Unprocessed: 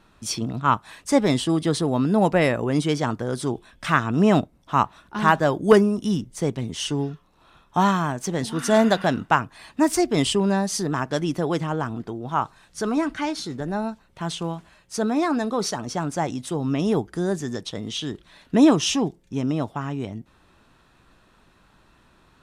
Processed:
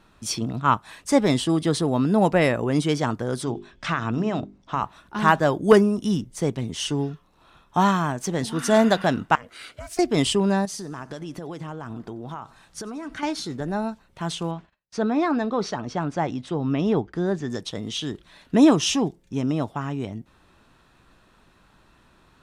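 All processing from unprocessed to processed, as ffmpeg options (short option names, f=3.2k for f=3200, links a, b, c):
-filter_complex "[0:a]asettb=1/sr,asplit=3[a][b][c];[a]atrim=end=3.434[d];[b]atrim=start=3.43:end=4.83,asetpts=PTS-STARTPTS,afade=t=in:d=0.004:c=qsin,afade=t=out:st=1.396:d=0.004:c=qsin,lowpass=f=6.9k:w=0.5412,lowpass=f=6.9k:w=1.3066,acompressor=threshold=-19dB:ratio=6:attack=3.2:release=140:knee=1:detection=peak,bandreject=f=50:t=h:w=6,bandreject=f=100:t=h:w=6,bandreject=f=150:t=h:w=6,bandreject=f=200:t=h:w=6,bandreject=f=250:t=h:w=6,bandreject=f=300:t=h:w=6,bandreject=f=350:t=h:w=6,bandreject=f=400:t=h:w=6[e];[c]atrim=start=4.826[f];[d][e]acrossfade=d=0.004:c1=hsin:c2=qsin[g];[g][f]acrossfade=d=0.004:c1=qsin:c2=hsin,asettb=1/sr,asplit=3[h][i][j];[h]atrim=end=9.354[k];[i]atrim=start=9.35:end=9.99,asetpts=PTS-STARTPTS,afade=t=in:d=0.004:c=qsin,afade=t=out:st=0.636:d=0.004:c=qsin,highshelf=f=1.5k:t=q:w=1.5:g=6.5,acompressor=threshold=-32dB:ratio=6:attack=3.2:release=140:knee=1:detection=peak,aeval=exprs='val(0)*sin(2*PI*360*n/s)':c=same[l];[j]atrim=start=9.986[m];[k][l]acrossfade=d=0.004:c1=hsin:c2=qsin[n];[n][m]acrossfade=d=0.004:c1=qsin:c2=hsin,asettb=1/sr,asplit=3[o][p][q];[o]atrim=end=10.654[r];[p]atrim=start=10.65:end=13.23,asetpts=PTS-STARTPTS,afade=t=in:d=0.004:c=qsin,afade=t=out:st=2.576:d=0.004:c=qsin,acompressor=threshold=-30dB:ratio=12:attack=3.2:release=140:knee=1:detection=peak,aecho=1:1:91|182|273|364:0.0794|0.0421|0.0223|0.0118,atrim=end_sample=113778[s];[q]atrim=start=13.226[t];[r][s]acrossfade=d=0.004:c1=hsin:c2=qsin[u];[u][t]acrossfade=d=0.004:c1=qsin:c2=hsin,asettb=1/sr,asplit=3[v][w][x];[v]atrim=end=14.514[y];[w]atrim=start=14.51:end=17.5,asetpts=PTS-STARTPTS,afade=t=in:d=0.004:c=qsin,afade=t=out:st=2.986:d=0.004:c=qsin,lowpass=3.8k,agate=range=-32dB:threshold=-52dB:ratio=16:release=100:detection=peak[z];[x]atrim=start=17.496[aa];[y][z]acrossfade=d=0.004:c1=hsin:c2=qsin[ab];[ab][aa]acrossfade=d=0.004:c1=qsin:c2=hsin"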